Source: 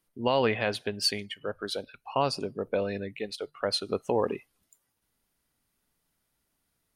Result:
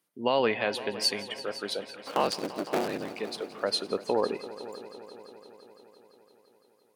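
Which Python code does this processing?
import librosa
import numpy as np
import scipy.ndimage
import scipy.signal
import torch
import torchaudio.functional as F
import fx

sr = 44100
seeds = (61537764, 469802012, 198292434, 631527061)

y = fx.cycle_switch(x, sr, every=3, mode='inverted', at=(1.97, 3.13))
y = scipy.signal.sosfilt(scipy.signal.butter(2, 200.0, 'highpass', fs=sr, output='sos'), y)
y = fx.echo_heads(y, sr, ms=170, heads='all three', feedback_pct=62, wet_db=-19)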